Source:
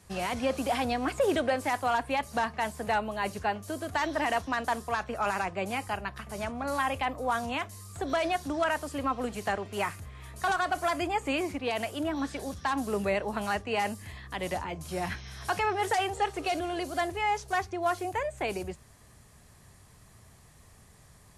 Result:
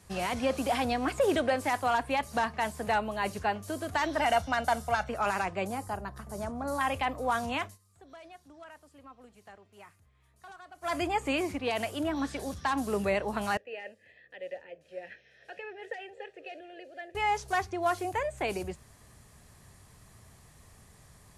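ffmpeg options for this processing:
-filter_complex "[0:a]asettb=1/sr,asplit=3[a][b][c];[a]atrim=end=4.204[d];[b]atrim=start=4.2:end=5.09,asetpts=PTS-STARTPTS,afade=t=in:d=0.004:c=qsin,afade=t=out:st=0.886:d=0.004:c=qsin,aecho=1:1:1.4:0.67,atrim=end_sample=39249[e];[c]atrim=start=5.086[f];[d][e]acrossfade=d=0.004:c1=hsin:c2=qsin[g];[g][f]acrossfade=d=0.004:c1=qsin:c2=hsin,asettb=1/sr,asplit=3[h][i][j];[h]atrim=end=5.674[k];[i]atrim=start=5.67:end=6.81,asetpts=PTS-STARTPTS,afade=t=in:d=0.004:c=qsin,afade=t=out:st=1.136:d=0.004:c=qsin,equalizer=f=2.6k:w=1.1:g=-15[l];[j]atrim=start=6.806[m];[k][l]acrossfade=d=0.004:c1=hsin:c2=qsin[n];[n][m]acrossfade=d=0.004:c1=qsin:c2=hsin,asettb=1/sr,asplit=3[o][p][q];[o]atrim=end=13.574[r];[p]atrim=start=13.57:end=17.15,asetpts=PTS-STARTPTS,afade=t=in:d=0.004:c=qsin,afade=t=out:st=3.576:d=0.004:c=qsin,asplit=3[s][t][u];[s]bandpass=f=530:t=q:w=8,volume=0dB[v];[t]bandpass=f=1.84k:t=q:w=8,volume=-6dB[w];[u]bandpass=f=2.48k:t=q:w=8,volume=-9dB[x];[v][w][x]amix=inputs=3:normalize=0[y];[q]atrim=start=17.146[z];[r][y]acrossfade=d=0.004:c1=hsin:c2=qsin[aa];[aa][z]acrossfade=d=0.004:c1=qsin:c2=hsin,asplit=3[ab][ac][ad];[ab]atrim=end=7.78,asetpts=PTS-STARTPTS,afade=t=out:st=7.65:d=0.13:silence=0.0841395[ae];[ac]atrim=start=7.78:end=10.81,asetpts=PTS-STARTPTS,volume=-21.5dB[af];[ad]atrim=start=10.81,asetpts=PTS-STARTPTS,afade=t=in:d=0.13:silence=0.0841395[ag];[ae][af][ag]concat=n=3:v=0:a=1"

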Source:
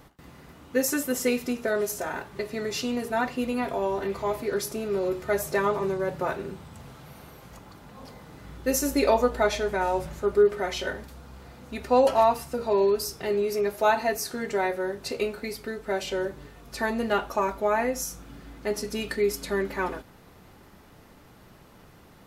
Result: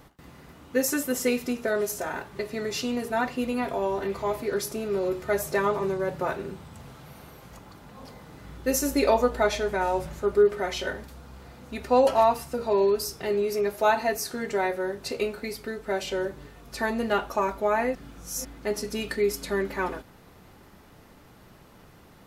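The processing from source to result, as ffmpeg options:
-filter_complex "[0:a]asplit=3[a][b][c];[a]atrim=end=17.952[d];[b]atrim=start=17.948:end=18.452,asetpts=PTS-STARTPTS,areverse[e];[c]atrim=start=18.448[f];[d][e]acrossfade=d=0.004:c1=hsin:c2=hsin[g];[g][f]acrossfade=d=0.004:c1=hsin:c2=hsin"

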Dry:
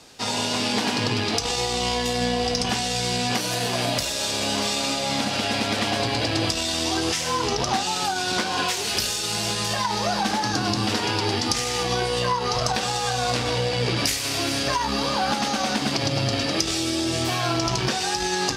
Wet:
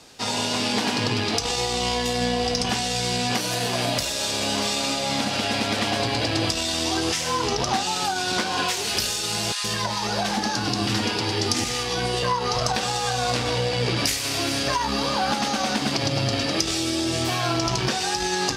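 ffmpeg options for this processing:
-filter_complex "[0:a]asettb=1/sr,asplit=3[a][b][c];[a]atrim=end=9.524[d];[b]atrim=start=9.52:end=12.23,asetpts=PTS-STARTPTS,afade=t=in:d=0.004:c=qsin,afade=t=out:st=2.706:d=0.004:c=qsin,acrossover=split=910[e][f];[e]adelay=120[g];[g][f]amix=inputs=2:normalize=0,atrim=end_sample=119511[h];[c]atrim=start=12.226[i];[d][h]acrossfade=d=0.004:c1=hsin:c2=qsin[j];[j][i]acrossfade=d=0.004:c1=qsin:c2=hsin"

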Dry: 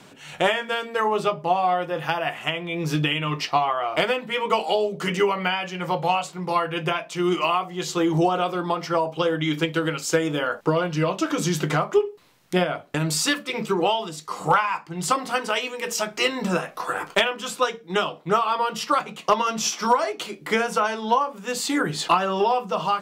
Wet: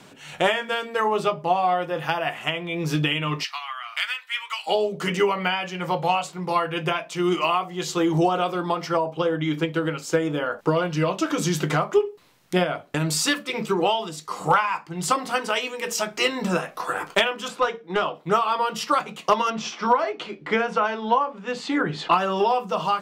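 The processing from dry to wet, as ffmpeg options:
-filter_complex "[0:a]asplit=3[a][b][c];[a]afade=t=out:st=3.43:d=0.02[d];[b]highpass=f=1.4k:w=0.5412,highpass=f=1.4k:w=1.3066,afade=t=in:st=3.43:d=0.02,afade=t=out:st=4.66:d=0.02[e];[c]afade=t=in:st=4.66:d=0.02[f];[d][e][f]amix=inputs=3:normalize=0,asettb=1/sr,asplit=3[g][h][i];[g]atrim=end=8.974[j];[h]atrim=start=8.97:end=10.59,asetpts=PTS-STARTPTS,afade=t=in:d=0.004:c=qsin,afade=t=out:st=1.616:d=0.004:c=qsin,highshelf=f=2.2k:g=-7.5[k];[i]atrim=start=10.586[l];[j][k]acrossfade=d=0.004:c1=hsin:c2=qsin[m];[m][l]acrossfade=d=0.004:c1=qsin:c2=hsin,asettb=1/sr,asplit=3[n][o][p];[n]atrim=end=17.484[q];[o]atrim=start=17.48:end=18.15,asetpts=PTS-STARTPTS,afade=t=in:d=0.004:c=qsin,afade=t=out:st=0.666:d=0.004:c=qsin,asplit=2[r][s];[s]highpass=f=720:p=1,volume=12dB,asoftclip=type=tanh:threshold=-8dB[t];[r][t]amix=inputs=2:normalize=0,lowpass=f=1k:p=1,volume=-6dB[u];[p]atrim=start=18.146[v];[q][u]acrossfade=d=0.004:c1=hsin:c2=qsin[w];[w][v]acrossfade=d=0.004:c1=qsin:c2=hsin,asettb=1/sr,asplit=3[x][y][z];[x]atrim=end=19.504[aa];[y]atrim=start=19.5:end=22.13,asetpts=PTS-STARTPTS,afade=t=in:d=0.004:c=qsin,afade=t=out:st=2.626:d=0.004:c=qsin,lowpass=3.3k[ab];[z]atrim=start=22.126[ac];[aa][ab]acrossfade=d=0.004:c1=hsin:c2=qsin[ad];[ad][ac]acrossfade=d=0.004:c1=qsin:c2=hsin"

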